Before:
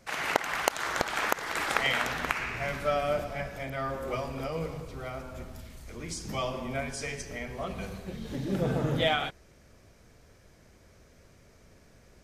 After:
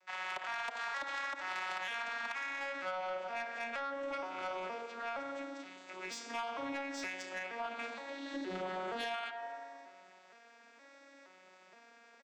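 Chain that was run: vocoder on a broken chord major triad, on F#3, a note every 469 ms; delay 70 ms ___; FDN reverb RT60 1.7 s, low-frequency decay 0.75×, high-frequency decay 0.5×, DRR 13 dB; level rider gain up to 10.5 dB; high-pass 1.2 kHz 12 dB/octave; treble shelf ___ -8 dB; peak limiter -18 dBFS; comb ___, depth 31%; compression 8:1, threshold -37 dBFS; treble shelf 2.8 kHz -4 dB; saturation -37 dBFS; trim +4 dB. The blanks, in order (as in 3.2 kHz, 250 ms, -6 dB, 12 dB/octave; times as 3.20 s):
-17.5 dB, 6.2 kHz, 3.1 ms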